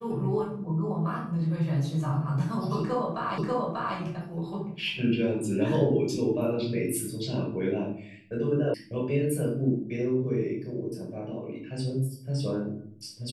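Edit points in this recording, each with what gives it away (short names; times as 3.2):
3.38 repeat of the last 0.59 s
8.74 sound cut off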